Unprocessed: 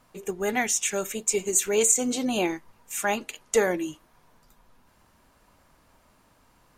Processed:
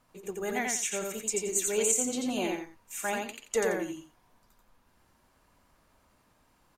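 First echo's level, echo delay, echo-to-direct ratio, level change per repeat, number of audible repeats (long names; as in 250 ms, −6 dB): −3.0 dB, 87 ms, −2.5 dB, −12.0 dB, 2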